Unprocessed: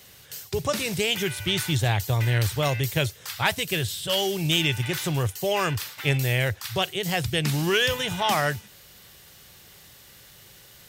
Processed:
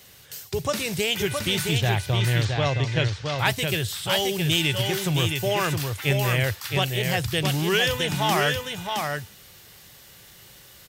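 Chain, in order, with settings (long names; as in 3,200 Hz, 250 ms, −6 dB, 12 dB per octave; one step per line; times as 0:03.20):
0:01.78–0:03.39: low-pass filter 5,800 Hz 24 dB per octave
on a send: single-tap delay 667 ms −4.5 dB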